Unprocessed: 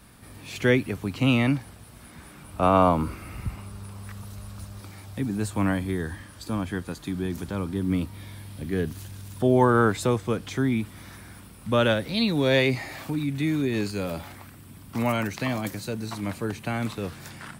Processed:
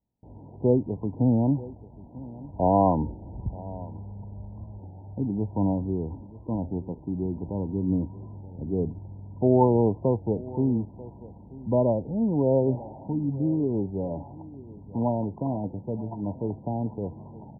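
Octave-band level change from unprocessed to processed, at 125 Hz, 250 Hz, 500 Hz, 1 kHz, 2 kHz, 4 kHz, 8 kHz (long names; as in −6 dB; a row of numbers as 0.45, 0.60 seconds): 0.0 dB, 0.0 dB, 0.0 dB, −2.5 dB, below −40 dB, below −40 dB, below −40 dB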